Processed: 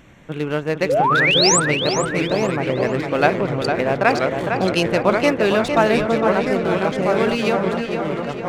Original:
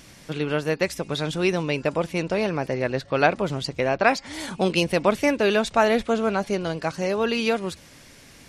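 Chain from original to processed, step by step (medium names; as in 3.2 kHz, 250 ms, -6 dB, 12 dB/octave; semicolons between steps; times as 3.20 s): local Wiener filter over 9 samples; ever faster or slower copies 588 ms, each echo -2 st, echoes 3, each echo -6 dB; painted sound rise, 0.89–1.60 s, 470–8700 Hz -19 dBFS; on a send: tape echo 457 ms, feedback 54%, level -5 dB, low-pass 3.5 kHz; on the sum: trim +2.5 dB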